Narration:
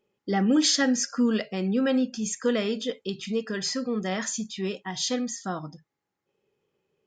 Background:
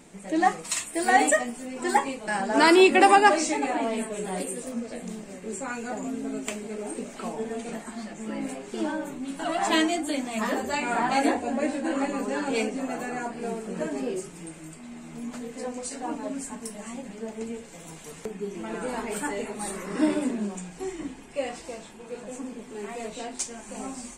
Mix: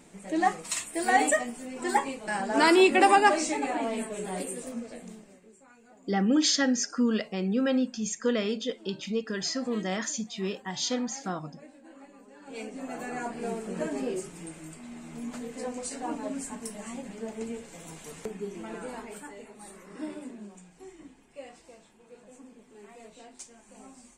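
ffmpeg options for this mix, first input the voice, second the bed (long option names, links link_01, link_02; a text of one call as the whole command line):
ffmpeg -i stem1.wav -i stem2.wav -filter_complex "[0:a]adelay=5800,volume=-2dB[link_01];[1:a]volume=19dB,afade=type=out:start_time=4.64:duration=0.89:silence=0.0944061,afade=type=in:start_time=12.4:duration=0.91:silence=0.0794328,afade=type=out:start_time=18.24:duration=1.03:silence=0.237137[link_02];[link_01][link_02]amix=inputs=2:normalize=0" out.wav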